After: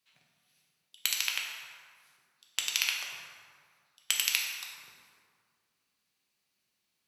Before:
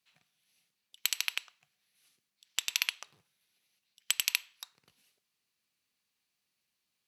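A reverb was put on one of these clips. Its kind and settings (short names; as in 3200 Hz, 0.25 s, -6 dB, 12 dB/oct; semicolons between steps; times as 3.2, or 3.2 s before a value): plate-style reverb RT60 2 s, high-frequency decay 0.55×, DRR -1 dB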